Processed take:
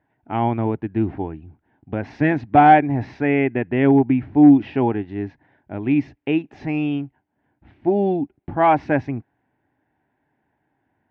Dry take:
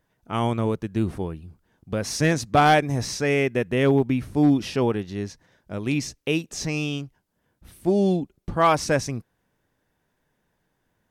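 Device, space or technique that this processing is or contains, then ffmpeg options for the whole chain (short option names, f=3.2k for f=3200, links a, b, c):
bass cabinet: -af "highpass=89,equalizer=f=180:t=q:w=4:g=-8,equalizer=f=290:t=q:w=4:g=6,equalizer=f=500:t=q:w=4:g=-9,equalizer=f=800:t=q:w=4:g=7,equalizer=f=1.2k:t=q:w=4:g=-10,lowpass=f=2.3k:w=0.5412,lowpass=f=2.3k:w=1.3066,volume=3.5dB"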